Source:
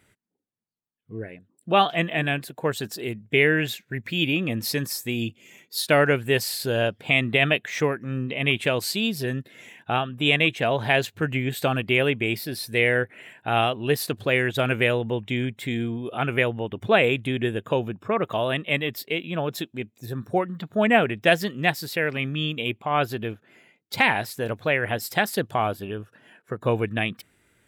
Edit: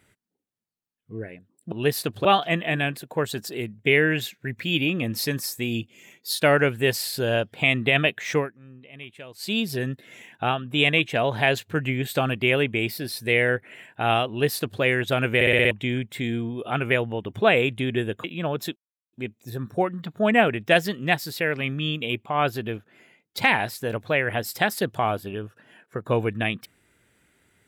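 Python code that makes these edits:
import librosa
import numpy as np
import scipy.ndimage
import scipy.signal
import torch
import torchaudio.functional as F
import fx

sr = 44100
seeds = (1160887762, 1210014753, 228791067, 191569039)

y = fx.edit(x, sr, fx.fade_down_up(start_s=7.86, length_s=1.13, db=-18.5, fade_s=0.14),
    fx.duplicate(start_s=13.76, length_s=0.53, to_s=1.72),
    fx.stutter_over(start_s=14.82, slice_s=0.06, count=6),
    fx.cut(start_s=17.71, length_s=1.46),
    fx.insert_silence(at_s=19.69, length_s=0.37), tone=tone)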